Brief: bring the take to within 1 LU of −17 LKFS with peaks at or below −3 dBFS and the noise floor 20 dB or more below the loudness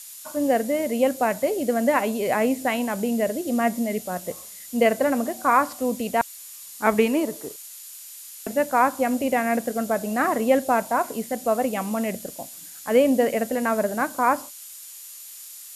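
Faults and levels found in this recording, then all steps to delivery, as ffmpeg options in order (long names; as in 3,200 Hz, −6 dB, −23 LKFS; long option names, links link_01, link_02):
interfering tone 7,000 Hz; level of the tone −49 dBFS; background noise floor −42 dBFS; target noise floor −44 dBFS; integrated loudness −23.5 LKFS; sample peak −4.5 dBFS; target loudness −17.0 LKFS
→ -af "bandreject=frequency=7000:width=30"
-af "afftdn=noise_reduction=6:noise_floor=-42"
-af "volume=6.5dB,alimiter=limit=-3dB:level=0:latency=1"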